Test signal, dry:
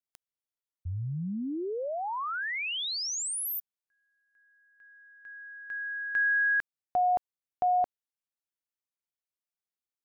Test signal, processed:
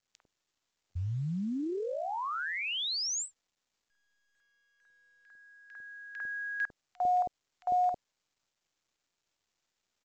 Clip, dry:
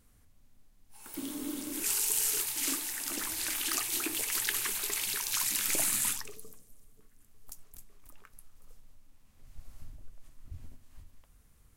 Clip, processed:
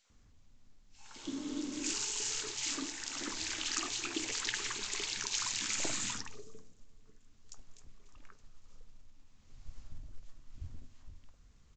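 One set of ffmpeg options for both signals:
-filter_complex "[0:a]acrossover=split=630|1900[a][b][c];[b]adelay=50[d];[a]adelay=100[e];[e][d][c]amix=inputs=3:normalize=0" -ar 16000 -c:a pcm_mulaw

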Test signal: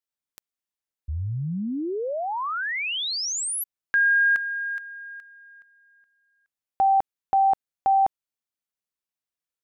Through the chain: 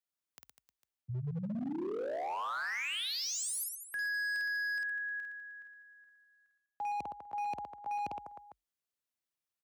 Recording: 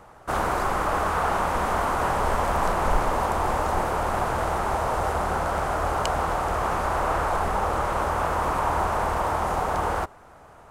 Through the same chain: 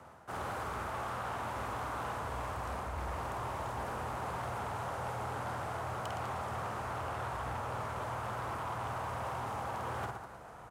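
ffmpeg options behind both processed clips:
-af "areverse,acompressor=threshold=-31dB:ratio=12:attack=13:release=692:knee=6:detection=peak,areverse,aecho=1:1:50|115|199.5|309.4|452.2:0.631|0.398|0.251|0.158|0.1,afreqshift=45,asoftclip=type=hard:threshold=-29.5dB,volume=-4dB"

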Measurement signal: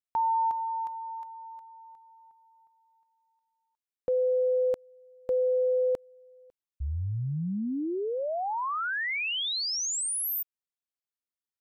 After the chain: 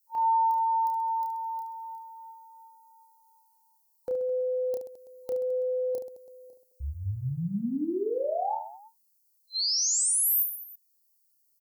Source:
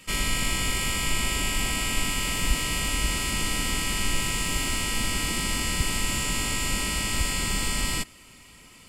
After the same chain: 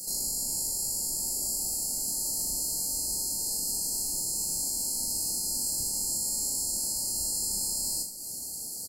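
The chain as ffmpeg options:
-filter_complex "[0:a]aemphasis=mode=production:type=75fm,afftfilt=real='re*(1-between(b*sr/4096,910,4100))':imag='im*(1-between(b*sr/4096,910,4100))':win_size=4096:overlap=0.75,lowshelf=f=140:g=-11,acompressor=threshold=-35dB:ratio=4:attack=0.15:release=177:knee=6:detection=rms,asplit=2[a][b];[b]aecho=0:1:30|72|130.8|213.1|328.4:0.631|0.398|0.251|0.158|0.1[c];[a][c]amix=inputs=2:normalize=0,volume=5.5dB"

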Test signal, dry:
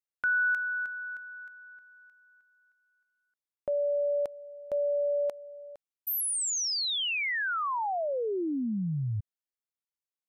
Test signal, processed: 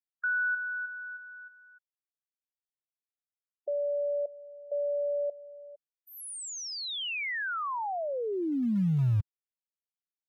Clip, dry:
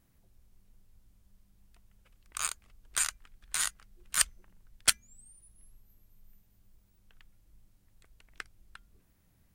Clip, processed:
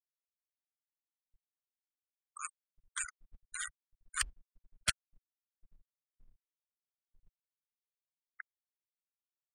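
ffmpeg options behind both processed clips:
-filter_complex "[0:a]afftfilt=real='re*gte(hypot(re,im),0.0398)':imag='im*gte(hypot(re,im),0.0398)':win_size=1024:overlap=0.75,lowpass=f=11k:w=0.5412,lowpass=f=11k:w=1.3066,lowshelf=f=95:g=-7,acrossover=split=180[a][b];[a]acrusher=bits=3:mode=log:mix=0:aa=0.000001[c];[c][b]amix=inputs=2:normalize=0,bass=f=250:g=11,treble=f=4k:g=-7,asplit=2[d][e];[e]aeval=exprs='0.106*(abs(mod(val(0)/0.106+3,4)-2)-1)':c=same,volume=-11dB[f];[d][f]amix=inputs=2:normalize=0,volume=-4.5dB"

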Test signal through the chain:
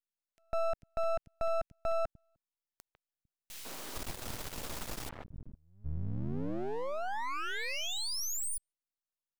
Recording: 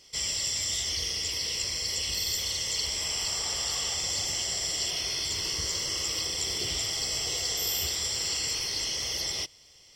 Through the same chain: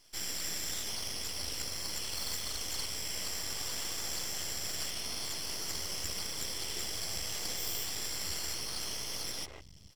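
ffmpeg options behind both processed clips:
-filter_complex "[0:a]acrossover=split=190|2100[a][b][c];[b]adelay=150[d];[a]adelay=450[e];[e][d][c]amix=inputs=3:normalize=0,aeval=exprs='max(val(0),0)':c=same,volume=-2.5dB"

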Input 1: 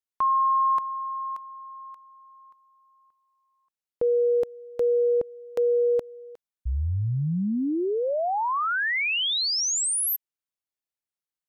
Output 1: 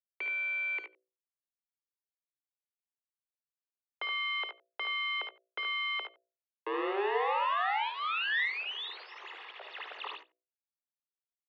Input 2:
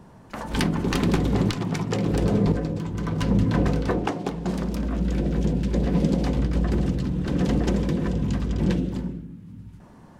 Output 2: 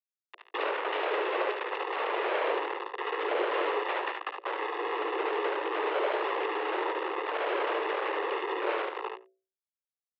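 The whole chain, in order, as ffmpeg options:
-filter_complex "[0:a]acrusher=bits=3:mix=0:aa=0.000001,highshelf=f=2.4k:g=-4,aecho=1:1:1.2:0.99,aeval=exprs='abs(val(0))':c=same,bandreject=f=60:t=h:w=6,bandreject=f=120:t=h:w=6,bandreject=f=180:t=h:w=6,bandreject=f=240:t=h:w=6,bandreject=f=300:t=h:w=6,bandreject=f=360:t=h:w=6,bandreject=f=420:t=h:w=6,bandreject=f=480:t=h:w=6,asplit=2[a][b];[b]aecho=0:1:56|73:0.335|0.473[c];[a][c]amix=inputs=2:normalize=0,highpass=f=180:t=q:w=0.5412,highpass=f=180:t=q:w=1.307,lowpass=f=3k:t=q:w=0.5176,lowpass=f=3k:t=q:w=0.7071,lowpass=f=3k:t=q:w=1.932,afreqshift=200,asplit=2[d][e];[e]adelay=90,highpass=300,lowpass=3.4k,asoftclip=type=hard:threshold=-17dB,volume=-22dB[f];[d][f]amix=inputs=2:normalize=0,volume=-7dB"

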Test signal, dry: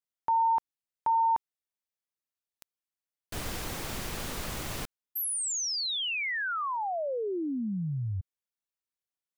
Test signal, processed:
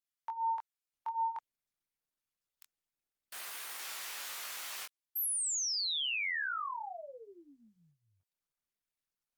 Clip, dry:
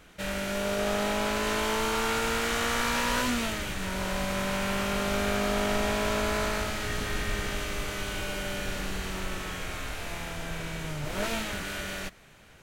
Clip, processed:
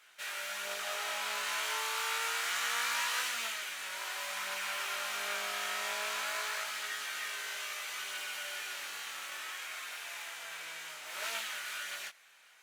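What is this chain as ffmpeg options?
-af "highpass=1.2k,flanger=delay=17.5:depth=7.5:speed=0.27,highshelf=f=12k:g=3" -ar 48000 -c:a libopus -b:a 48k

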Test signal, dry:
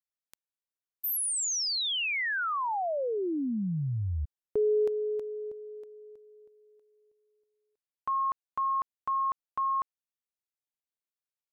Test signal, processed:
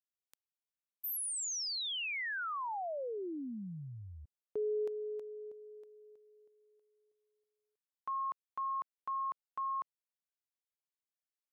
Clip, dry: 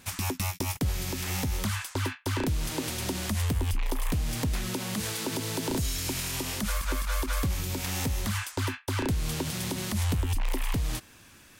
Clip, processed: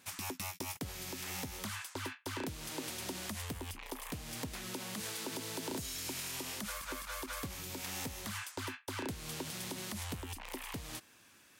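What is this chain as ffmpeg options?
-af "highpass=f=270:p=1,volume=-7.5dB"

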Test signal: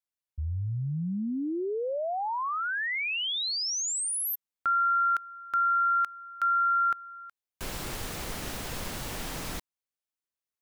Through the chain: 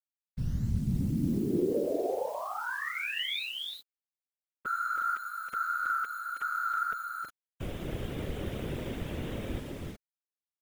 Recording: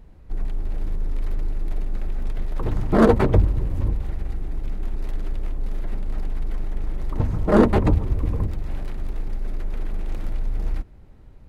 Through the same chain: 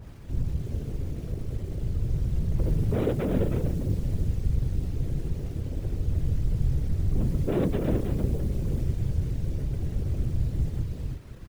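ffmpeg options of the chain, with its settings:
-filter_complex "[0:a]aresample=8000,asoftclip=type=hard:threshold=-20dB,aresample=44100,lowshelf=f=640:t=q:w=1.5:g=9.5,asplit=2[a][b];[b]aecho=0:1:302|321|362:0.106|0.531|0.299[c];[a][c]amix=inputs=2:normalize=0,acompressor=threshold=-27dB:ratio=1.5:attack=7.8:release=389:knee=6:detection=peak,acrusher=bits=7:mix=0:aa=0.000001,afftfilt=real='hypot(re,im)*cos(2*PI*random(0))':imag='hypot(re,im)*sin(2*PI*random(1))':win_size=512:overlap=0.75,adynamicequalizer=threshold=0.00562:dfrequency=1600:dqfactor=0.7:tfrequency=1600:tqfactor=0.7:attack=5:release=100:ratio=0.333:range=2:mode=boostabove:tftype=highshelf"

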